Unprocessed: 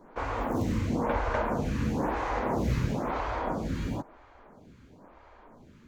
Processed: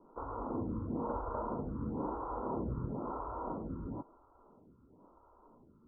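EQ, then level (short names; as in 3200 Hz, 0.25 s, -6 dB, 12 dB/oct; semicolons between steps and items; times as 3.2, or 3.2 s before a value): rippled Chebyshev low-pass 1400 Hz, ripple 6 dB; -5.5 dB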